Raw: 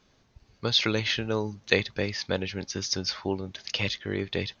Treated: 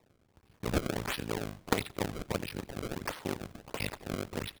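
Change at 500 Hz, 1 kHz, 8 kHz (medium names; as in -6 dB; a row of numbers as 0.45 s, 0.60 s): -7.0 dB, 0.0 dB, no reading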